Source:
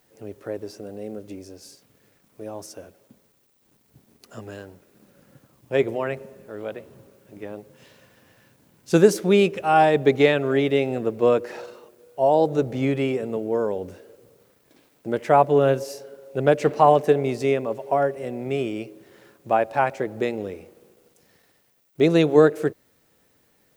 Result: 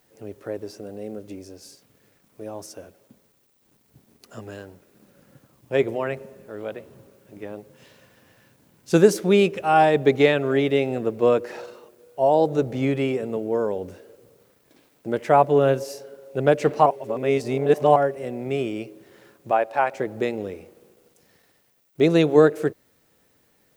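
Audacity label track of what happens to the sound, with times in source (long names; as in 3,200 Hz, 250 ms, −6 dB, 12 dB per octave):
16.860000	17.960000	reverse
19.510000	19.940000	bass and treble bass −13 dB, treble −3 dB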